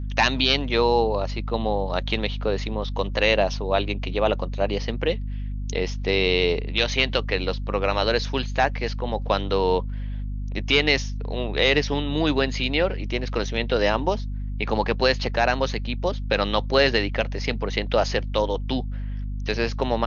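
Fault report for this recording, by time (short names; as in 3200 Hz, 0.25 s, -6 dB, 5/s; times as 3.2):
hum 50 Hz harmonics 5 -29 dBFS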